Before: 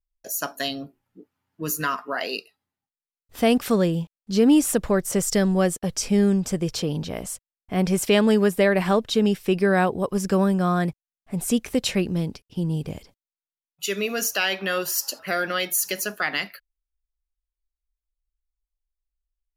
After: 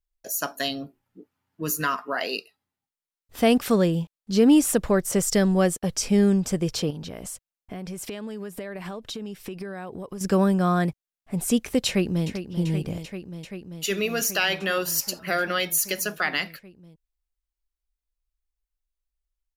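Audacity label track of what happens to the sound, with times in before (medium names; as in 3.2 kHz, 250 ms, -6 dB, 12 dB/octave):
6.900000	10.210000	compression 10:1, threshold -31 dBFS
11.870000	12.270000	echo throw 390 ms, feedback 85%, level -10 dB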